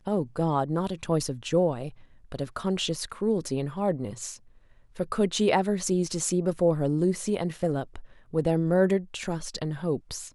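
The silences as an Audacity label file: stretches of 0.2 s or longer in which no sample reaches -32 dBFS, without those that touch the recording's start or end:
1.890000	2.320000	silence
4.340000	5.000000	silence
7.990000	8.340000	silence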